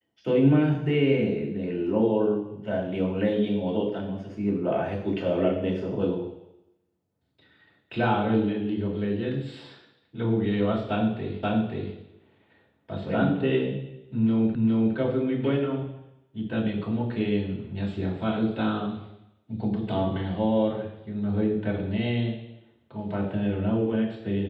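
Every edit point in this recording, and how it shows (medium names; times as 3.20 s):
11.43 s: repeat of the last 0.53 s
14.55 s: repeat of the last 0.41 s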